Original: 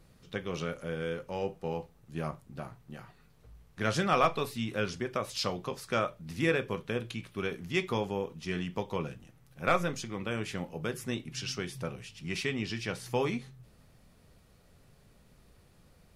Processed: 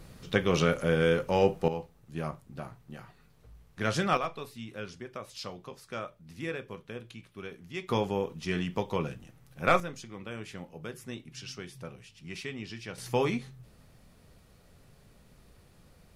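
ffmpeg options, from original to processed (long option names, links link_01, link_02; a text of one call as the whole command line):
ffmpeg -i in.wav -af "asetnsamples=nb_out_samples=441:pad=0,asendcmd='1.68 volume volume 0.5dB;4.17 volume volume -8dB;7.89 volume volume 3dB;9.8 volume volume -6dB;12.98 volume volume 2.5dB',volume=10dB" out.wav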